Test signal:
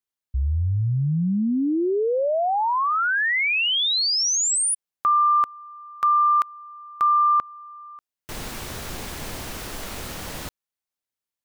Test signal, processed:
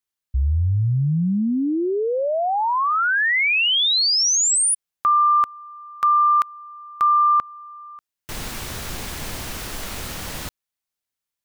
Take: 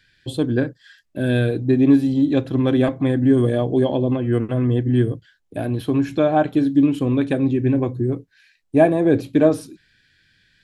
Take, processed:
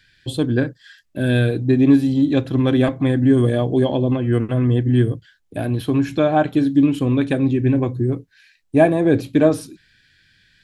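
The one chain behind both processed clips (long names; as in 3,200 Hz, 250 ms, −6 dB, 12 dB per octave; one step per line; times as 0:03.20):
parametric band 460 Hz −3.5 dB 2.5 octaves
level +3.5 dB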